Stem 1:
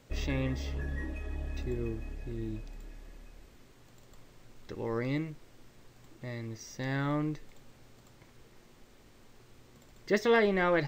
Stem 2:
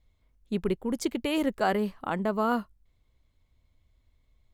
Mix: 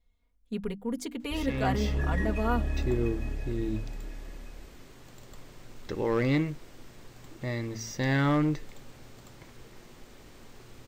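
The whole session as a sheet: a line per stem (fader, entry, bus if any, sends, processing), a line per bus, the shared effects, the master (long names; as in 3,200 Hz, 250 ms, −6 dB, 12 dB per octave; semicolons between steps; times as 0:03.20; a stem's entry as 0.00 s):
−3.0 dB, 1.20 s, no send, hum removal 112.4 Hz, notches 2; hard clipping −27.5 dBFS, distortion −9 dB; automatic gain control gain up to 10.5 dB
−7.0 dB, 0.00 s, no send, mains-hum notches 50/100/150/200/250/300 Hz; comb filter 4.2 ms, depth 93%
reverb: not used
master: no processing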